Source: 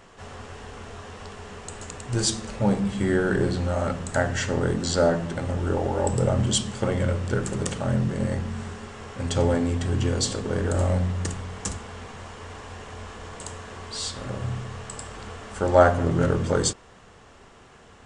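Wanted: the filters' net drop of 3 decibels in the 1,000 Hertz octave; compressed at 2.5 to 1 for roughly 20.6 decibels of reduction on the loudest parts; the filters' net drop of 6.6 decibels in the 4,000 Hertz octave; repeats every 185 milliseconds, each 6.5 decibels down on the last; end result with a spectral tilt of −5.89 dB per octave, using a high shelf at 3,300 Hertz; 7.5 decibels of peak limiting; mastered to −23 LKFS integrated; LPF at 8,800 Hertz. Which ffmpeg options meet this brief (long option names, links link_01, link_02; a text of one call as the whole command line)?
ffmpeg -i in.wav -af "lowpass=8800,equalizer=frequency=1000:width_type=o:gain=-3.5,highshelf=frequency=3300:gain=-5.5,equalizer=frequency=4000:width_type=o:gain=-4,acompressor=threshold=-44dB:ratio=2.5,alimiter=level_in=8.5dB:limit=-24dB:level=0:latency=1,volume=-8.5dB,aecho=1:1:185|370|555|740|925|1110:0.473|0.222|0.105|0.0491|0.0231|0.0109,volume=19.5dB" out.wav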